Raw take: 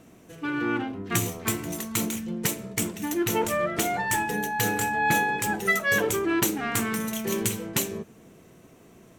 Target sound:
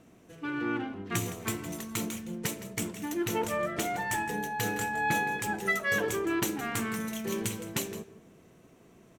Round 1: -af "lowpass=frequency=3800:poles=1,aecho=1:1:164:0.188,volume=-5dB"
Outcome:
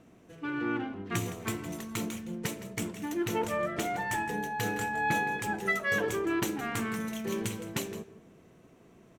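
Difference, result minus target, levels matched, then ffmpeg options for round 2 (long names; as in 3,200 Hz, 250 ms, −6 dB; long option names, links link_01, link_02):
8,000 Hz band −3.5 dB
-af "lowpass=frequency=8100:poles=1,aecho=1:1:164:0.188,volume=-5dB"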